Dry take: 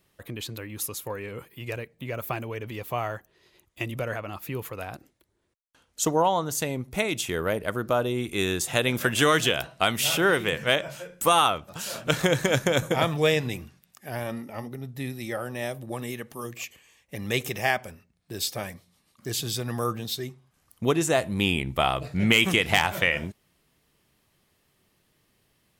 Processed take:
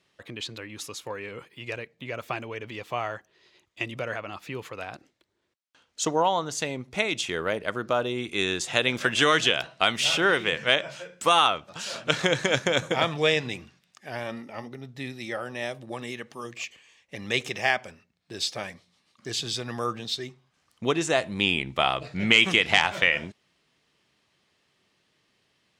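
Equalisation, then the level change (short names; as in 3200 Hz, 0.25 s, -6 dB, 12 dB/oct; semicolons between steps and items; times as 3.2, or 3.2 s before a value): HPF 190 Hz 6 dB/oct; air absorption 120 m; high shelf 2300 Hz +9.5 dB; -1.0 dB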